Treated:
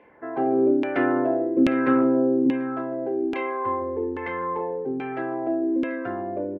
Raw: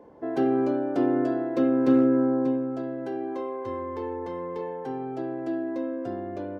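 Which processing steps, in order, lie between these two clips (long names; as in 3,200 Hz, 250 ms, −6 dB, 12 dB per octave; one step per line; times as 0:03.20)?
parametric band 2,300 Hz +11.5 dB 1.1 octaves
on a send: single-tap delay 148 ms −12.5 dB
on the sum: auto-filter low-pass saw down 1.2 Hz 280–2,700 Hz
automatic gain control gain up to 6.5 dB
tilt shelving filter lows −3.5 dB, about 1,300 Hz
level −3 dB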